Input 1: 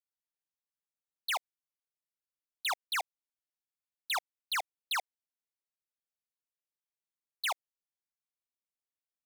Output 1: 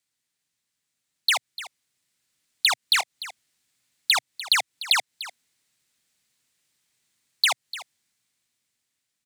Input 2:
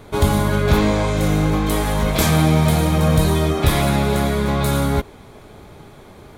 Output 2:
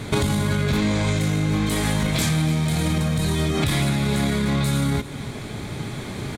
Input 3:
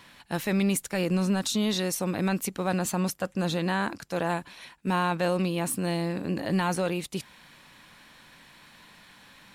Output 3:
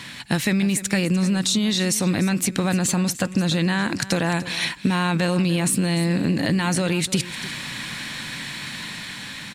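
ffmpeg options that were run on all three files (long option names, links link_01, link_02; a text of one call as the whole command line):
ffmpeg -i in.wav -filter_complex "[0:a]equalizer=frequency=125:width_type=o:width=1:gain=11,equalizer=frequency=250:width_type=o:width=1:gain=7,equalizer=frequency=2000:width_type=o:width=1:gain=8,equalizer=frequency=4000:width_type=o:width=1:gain=7,equalizer=frequency=8000:width_type=o:width=1:gain=10,dynaudnorm=framelen=790:gausssize=5:maxgain=8dB,alimiter=limit=-11dB:level=0:latency=1:release=32,acompressor=threshold=-25dB:ratio=10,asplit=2[link_01][link_02];[link_02]aecho=0:1:297:0.168[link_03];[link_01][link_03]amix=inputs=2:normalize=0,volume=7dB" out.wav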